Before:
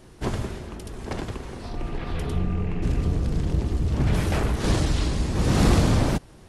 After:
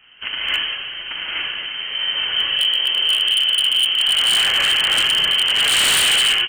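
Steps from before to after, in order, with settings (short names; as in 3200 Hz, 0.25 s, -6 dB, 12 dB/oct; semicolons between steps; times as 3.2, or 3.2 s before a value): bell 1400 Hz +9.5 dB 1.1 oct; added harmonics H 2 -8 dB, 3 -19 dB, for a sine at -5.5 dBFS; inverted band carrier 3100 Hz; non-linear reverb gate 0.31 s rising, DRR -7.5 dB; wavefolder -10.5 dBFS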